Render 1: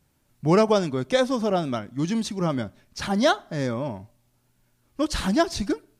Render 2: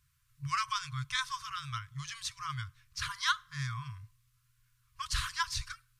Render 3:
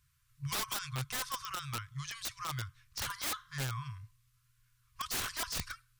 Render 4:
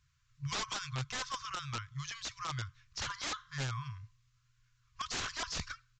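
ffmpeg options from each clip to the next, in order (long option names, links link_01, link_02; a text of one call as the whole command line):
ffmpeg -i in.wav -af "afftfilt=real='re*(1-between(b*sr/4096,140,980))':imag='im*(1-between(b*sr/4096,140,980))':win_size=4096:overlap=0.75,volume=-4dB" out.wav
ffmpeg -i in.wav -af "aeval=exprs='(mod(29.9*val(0)+1,2)-1)/29.9':channel_layout=same" out.wav
ffmpeg -i in.wav -af "aresample=16000,aresample=44100" out.wav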